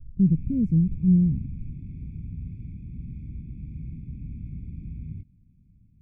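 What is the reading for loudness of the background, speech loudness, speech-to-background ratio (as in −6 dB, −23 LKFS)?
−38.5 LKFS, −22.5 LKFS, 16.0 dB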